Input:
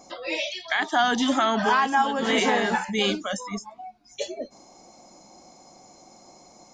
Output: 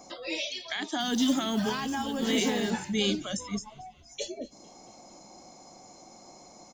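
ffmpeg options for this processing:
-filter_complex "[0:a]acrossover=split=410|3000[a][b][c];[b]acompressor=threshold=-50dB:ratio=2[d];[a][d][c]amix=inputs=3:normalize=0,asettb=1/sr,asplit=3[e][f][g];[e]atrim=end=1.004[h];[f]atrim=start=1:end=2.7,asetpts=PTS-STARTPTS,afade=t=in:d=0.004:c=qsin,afade=t=out:st=1.696:d=0.004:c=qsin,acrusher=bits=6:mode=log:mix=0:aa=0.000001[i];[g]atrim=start=2.696[j];[h][i]acrossfade=d=0.004:c1=hsin:c2=qsin[k];[k][j]acrossfade=d=0.004:c1=qsin:c2=hsin,asplit=5[l][m][n][o][p];[m]adelay=228,afreqshift=-63,volume=-22.5dB[q];[n]adelay=456,afreqshift=-126,volume=-27.1dB[r];[o]adelay=684,afreqshift=-189,volume=-31.7dB[s];[p]adelay=912,afreqshift=-252,volume=-36.2dB[t];[l][q][r][s][t]amix=inputs=5:normalize=0"

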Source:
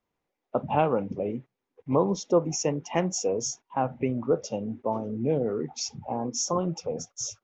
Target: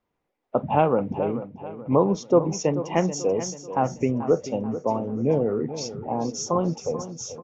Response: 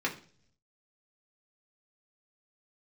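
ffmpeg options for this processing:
-af "highshelf=f=4k:g=-9.5,aecho=1:1:436|872|1308|1744:0.237|0.0996|0.0418|0.0176,volume=4dB"

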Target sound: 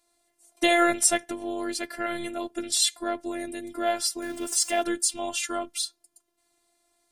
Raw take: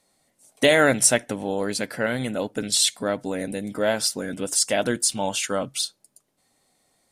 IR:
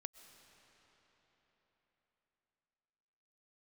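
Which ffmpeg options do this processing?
-filter_complex "[0:a]asettb=1/sr,asplit=3[a][b][c];[a]atrim=end=4.224[d];[b]atrim=start=4.22:end=4.83,asetpts=PTS-STARTPTS,afade=t=in:d=0.004:c=qsin,afade=t=out:st=0.606:d=0.004:c=qsin,aeval=exprs='val(0)+0.5*0.0188*sgn(val(0))':c=same[e];[c]atrim=start=4.826[f];[d][e]acrossfade=d=0.004:c1=hsin:c2=qsin[g];[g][f]acrossfade=d=0.004:c1=qsin:c2=hsin,afftfilt=real='hypot(re,im)*cos(PI*b)':imag='0':win_size=512:overlap=0.75"

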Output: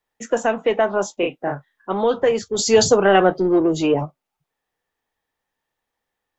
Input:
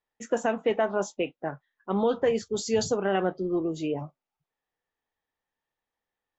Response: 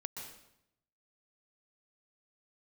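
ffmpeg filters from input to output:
-filter_complex "[0:a]acrossover=split=340|1000|2100[a][b][c][d];[a]asoftclip=type=tanh:threshold=-36dB[e];[e][b][c][d]amix=inputs=4:normalize=0,asettb=1/sr,asplit=3[f][g][h];[f]atrim=end=1.144[i];[g]atrim=start=1.14:end=1.93,asetpts=PTS-STARTPTS,afade=t=in:d=0.004:c=qsin,afade=t=out:st=0.786:d=0.004:c=qsin,asplit=2[j][k];[k]adelay=35,volume=-3dB[l];[j][l]amix=inputs=2:normalize=0,atrim=end_sample=34839[m];[h]atrim=start=1.926[n];[i][m]acrossfade=d=0.004:c1=hsin:c2=qsin[o];[o][n]acrossfade=d=0.004:c1=qsin:c2=hsin,asplit=3[p][q][r];[p]afade=t=out:st=2.58:d=0.02[s];[q]acontrast=47,afade=t=in:st=2.58:d=0.02,afade=t=out:st=4.04:d=0.02[t];[r]afade=t=in:st=4.04:d=0.02[u];[s][t][u]amix=inputs=3:normalize=0,volume=7.5dB"

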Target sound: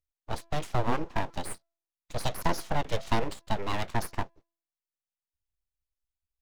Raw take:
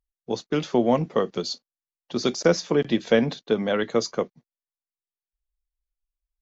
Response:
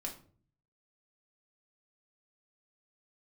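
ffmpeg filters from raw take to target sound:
-filter_complex "[0:a]bandreject=f=335.8:t=h:w=4,bandreject=f=671.6:t=h:w=4,acrossover=split=350[a][b];[b]acompressor=threshold=-21dB:ratio=2[c];[a][c]amix=inputs=2:normalize=0,aeval=exprs='abs(val(0))':c=same,volume=-3.5dB"

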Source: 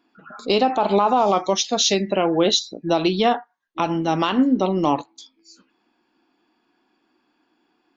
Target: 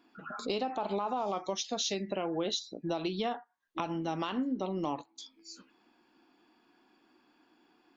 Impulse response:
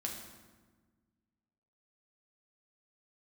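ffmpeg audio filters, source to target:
-af "acompressor=threshold=-38dB:ratio=2.5"

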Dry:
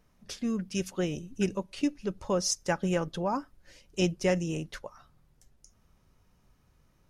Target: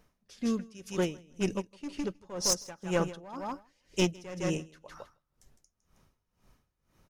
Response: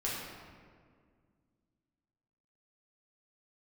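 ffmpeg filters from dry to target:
-filter_complex "[0:a]bass=f=250:g=-3,treble=f=4k:g=0,aeval=exprs='clip(val(0),-1,0.0447)':c=same,asplit=2[a][b];[b]aecho=0:1:159|318|477:0.376|0.0639|0.0109[c];[a][c]amix=inputs=2:normalize=0,aeval=exprs='val(0)*pow(10,-21*(0.5-0.5*cos(2*PI*2*n/s))/20)':c=same,volume=3.5dB"

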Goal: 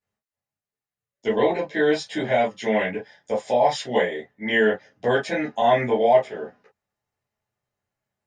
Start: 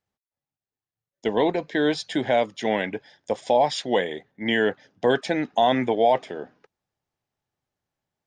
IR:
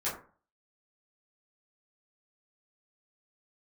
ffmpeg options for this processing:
-filter_complex "[1:a]atrim=start_sample=2205,atrim=end_sample=3528,asetrate=52920,aresample=44100[a];[0:a][a]afir=irnorm=-1:irlink=0,volume=-2.5dB"

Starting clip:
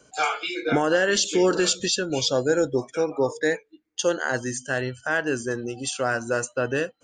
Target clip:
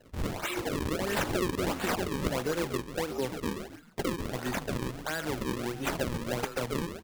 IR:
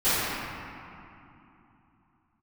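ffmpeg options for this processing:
-filter_complex "[0:a]acrossover=split=120|240|4900[a][b][c][d];[a]acompressor=threshold=-46dB:ratio=4[e];[b]acompressor=threshold=-38dB:ratio=4[f];[c]acompressor=threshold=-35dB:ratio=4[g];[d]acompressor=threshold=-32dB:ratio=4[h];[e][f][g][h]amix=inputs=4:normalize=0,asplit=2[i][j];[j]asplit=4[k][l][m][n];[k]adelay=133,afreqshift=-100,volume=-8dB[o];[l]adelay=266,afreqshift=-200,volume=-17.4dB[p];[m]adelay=399,afreqshift=-300,volume=-26.7dB[q];[n]adelay=532,afreqshift=-400,volume=-36.1dB[r];[o][p][q][r]amix=inputs=4:normalize=0[s];[i][s]amix=inputs=2:normalize=0,acrusher=bits=4:mode=log:mix=0:aa=0.000001,lowshelf=f=170:g=-6,acrusher=samples=36:mix=1:aa=0.000001:lfo=1:lforange=57.6:lforate=1.5,volume=1.5dB"

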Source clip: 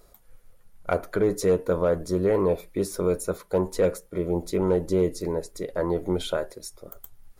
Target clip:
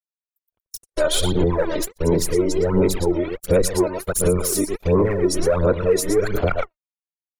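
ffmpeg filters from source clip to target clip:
-af "areverse,aecho=1:1:114|228|342:0.376|0.101|0.0274,acontrast=77,aeval=exprs='val(0)*gte(abs(val(0)),0.0299)':c=same,acompressor=threshold=-23dB:ratio=2,afftfilt=real='re*gte(hypot(re,im),0.00891)':imag='im*gte(hypot(re,im),0.00891)':win_size=1024:overlap=0.75,agate=range=-59dB:threshold=-28dB:ratio=16:detection=peak,crystalizer=i=5:c=0,aphaser=in_gain=1:out_gain=1:delay=3.3:decay=0.68:speed=1.4:type=sinusoidal,lowshelf=f=88:g=8,alimiter=level_in=7.5dB:limit=-1dB:release=50:level=0:latency=1,adynamicequalizer=threshold=0.0282:dfrequency=3800:dqfactor=0.7:tfrequency=3800:tqfactor=0.7:attack=5:release=100:ratio=0.375:range=2.5:mode=cutabove:tftype=highshelf,volume=-8dB"

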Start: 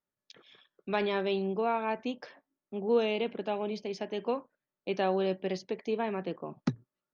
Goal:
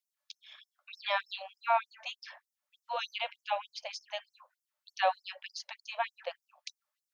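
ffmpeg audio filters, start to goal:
-af "acontrast=34,afftfilt=real='re*gte(b*sr/1024,510*pow(5200/510,0.5+0.5*sin(2*PI*3.3*pts/sr)))':imag='im*gte(b*sr/1024,510*pow(5200/510,0.5+0.5*sin(2*PI*3.3*pts/sr)))':win_size=1024:overlap=0.75"

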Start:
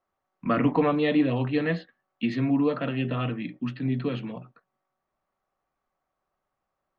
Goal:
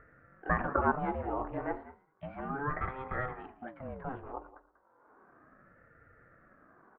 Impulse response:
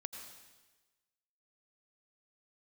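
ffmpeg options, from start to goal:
-filter_complex "[0:a]asplit=2[a][b];[b]acompressor=threshold=-33dB:ratio=6,volume=-1dB[c];[a][c]amix=inputs=2:normalize=0,aecho=1:1:111|222|333:0.0794|0.0326|0.0134,acrusher=bits=7:mode=log:mix=0:aa=0.000001,aecho=1:1:190:0.15,acompressor=mode=upward:threshold=-40dB:ratio=2.5,lowpass=f=1.2k:w=0.5412,lowpass=f=1.2k:w=1.3066,lowshelf=f=480:t=q:w=1.5:g=-13.5,aeval=exprs='val(0)*sin(2*PI*410*n/s+410*0.6/0.33*sin(2*PI*0.33*n/s))':c=same"

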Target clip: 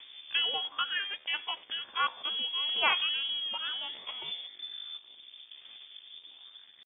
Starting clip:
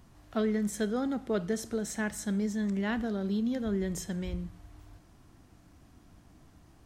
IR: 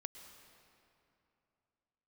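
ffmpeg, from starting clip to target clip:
-filter_complex "[0:a]acrossover=split=500|1800[a][b][c];[a]acompressor=threshold=-43dB:ratio=16[d];[d][b][c]amix=inputs=3:normalize=0,aemphasis=mode=reproduction:type=75kf,aphaser=in_gain=1:out_gain=1:delay=1.1:decay=0.55:speed=0.35:type=triangular,aeval=exprs='sgn(val(0))*max(abs(val(0))-0.002,0)':c=same,asetrate=64194,aresample=44100,atempo=0.686977,lowpass=f=3.1k:t=q:w=0.5098,lowpass=f=3.1k:t=q:w=0.6013,lowpass=f=3.1k:t=q:w=0.9,lowpass=f=3.1k:t=q:w=2.563,afreqshift=-3600,acontrast=34,equalizer=f=300:t=o:w=2.3:g=10.5"

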